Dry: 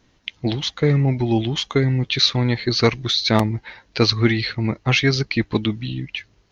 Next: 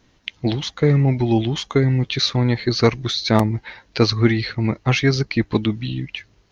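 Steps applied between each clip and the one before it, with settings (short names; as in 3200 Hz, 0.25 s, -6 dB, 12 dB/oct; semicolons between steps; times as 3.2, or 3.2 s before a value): dynamic EQ 3200 Hz, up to -6 dB, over -33 dBFS, Q 0.87; gain +1.5 dB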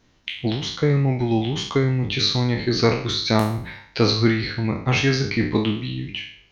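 spectral trails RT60 0.56 s; gain -3.5 dB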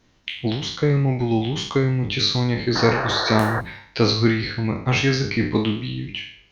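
painted sound noise, 2.75–3.61, 310–1900 Hz -25 dBFS; Opus 64 kbps 48000 Hz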